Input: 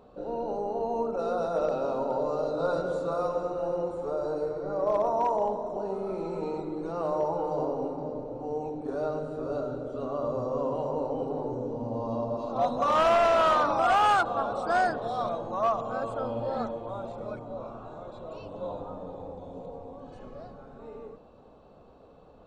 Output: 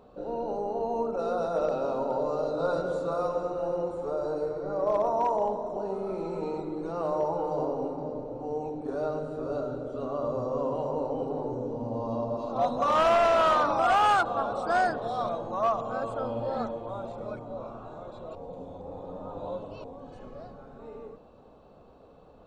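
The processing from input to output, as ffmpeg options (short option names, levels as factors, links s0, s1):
-filter_complex "[0:a]asplit=3[s0][s1][s2];[s0]atrim=end=18.352[s3];[s1]atrim=start=18.348:end=19.842,asetpts=PTS-STARTPTS,areverse[s4];[s2]atrim=start=19.838[s5];[s3][s4]acrossfade=d=0.004:c1=hsin:c2=hsin[s6];[s6][s5]acrossfade=d=0.004:c1=hsin:c2=hsin"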